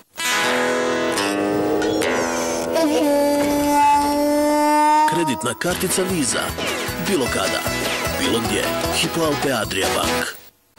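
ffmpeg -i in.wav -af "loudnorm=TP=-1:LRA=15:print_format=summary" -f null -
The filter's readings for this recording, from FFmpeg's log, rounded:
Input Integrated:    -19.2 LUFS
Input True Peak:     -10.0 dBTP
Input LRA:             3.1 LU
Input Threshold:     -29.3 LUFS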